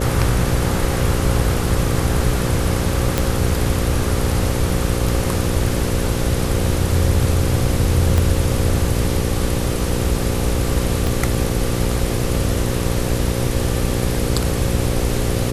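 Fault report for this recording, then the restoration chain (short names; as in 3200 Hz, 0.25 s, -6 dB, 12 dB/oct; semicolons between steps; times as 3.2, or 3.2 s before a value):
buzz 60 Hz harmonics 9 -23 dBFS
3.18 pop
8.18 pop
11.07 pop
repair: de-click; de-hum 60 Hz, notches 9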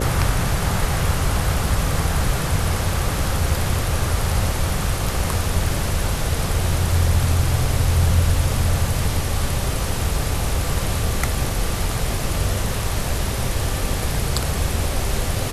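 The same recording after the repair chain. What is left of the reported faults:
8.18 pop
11.07 pop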